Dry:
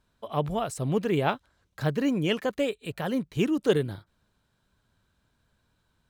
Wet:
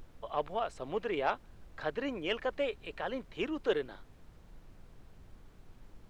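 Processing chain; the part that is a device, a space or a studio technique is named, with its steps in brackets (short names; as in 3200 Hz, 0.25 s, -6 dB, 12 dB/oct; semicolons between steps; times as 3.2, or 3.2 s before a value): aircraft cabin announcement (BPF 480–3200 Hz; soft clip -15 dBFS, distortion -23 dB; brown noise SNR 14 dB); gain -2.5 dB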